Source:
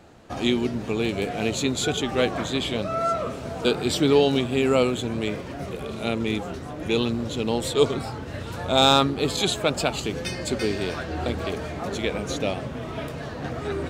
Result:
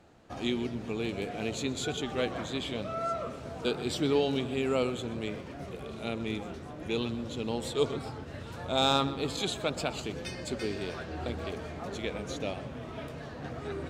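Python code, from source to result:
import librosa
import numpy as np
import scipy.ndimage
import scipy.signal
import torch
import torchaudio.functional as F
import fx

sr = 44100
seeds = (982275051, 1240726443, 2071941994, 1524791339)

p1 = fx.high_shelf(x, sr, hz=12000.0, db=-6.5)
p2 = p1 + fx.echo_filtered(p1, sr, ms=125, feedback_pct=52, hz=4300.0, wet_db=-14.5, dry=0)
y = F.gain(torch.from_numpy(p2), -8.5).numpy()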